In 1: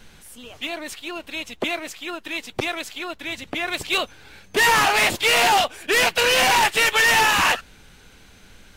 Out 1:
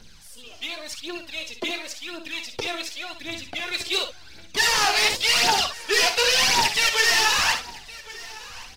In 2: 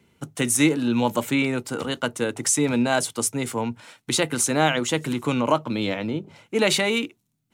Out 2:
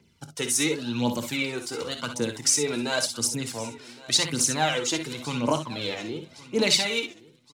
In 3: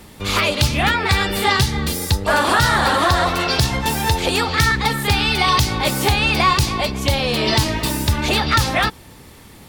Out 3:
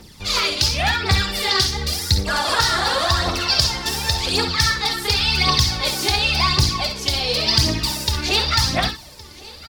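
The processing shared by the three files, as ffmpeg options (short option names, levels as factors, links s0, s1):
-filter_complex "[0:a]equalizer=f=5000:t=o:w=0.88:g=12.5,asplit=2[s0][s1];[s1]aecho=0:1:1115|2230|3345:0.1|0.039|0.0152[s2];[s0][s2]amix=inputs=2:normalize=0,aphaser=in_gain=1:out_gain=1:delay=3:decay=0.61:speed=0.91:type=triangular,asplit=2[s3][s4];[s4]aecho=0:1:26|54|66:0.15|0.266|0.316[s5];[s3][s5]amix=inputs=2:normalize=0,volume=0.398"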